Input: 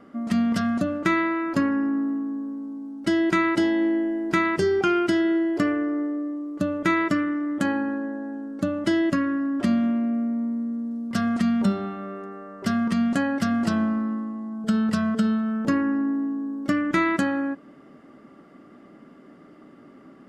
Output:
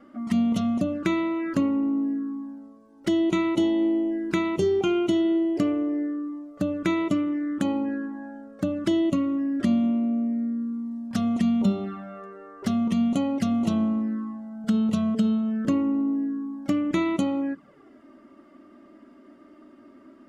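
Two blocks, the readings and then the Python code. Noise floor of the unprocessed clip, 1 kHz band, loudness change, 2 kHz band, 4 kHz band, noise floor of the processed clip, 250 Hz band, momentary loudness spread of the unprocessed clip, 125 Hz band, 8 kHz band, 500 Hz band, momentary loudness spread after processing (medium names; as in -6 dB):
-50 dBFS, -6.5 dB, -1.0 dB, -10.0 dB, -1.5 dB, -53 dBFS, -0.5 dB, 9 LU, -0.5 dB, no reading, -1.0 dB, 10 LU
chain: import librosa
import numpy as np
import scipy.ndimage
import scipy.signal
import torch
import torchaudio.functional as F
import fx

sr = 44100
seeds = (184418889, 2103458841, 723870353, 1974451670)

y = fx.env_flanger(x, sr, rest_ms=3.8, full_db=-21.5)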